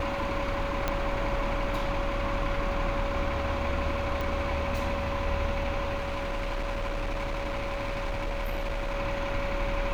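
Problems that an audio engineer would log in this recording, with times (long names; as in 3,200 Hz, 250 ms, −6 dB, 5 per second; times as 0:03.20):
whistle 560 Hz −33 dBFS
0:00.88: click −12 dBFS
0:04.21: click
0:05.96–0:08.95: clipping −27.5 dBFS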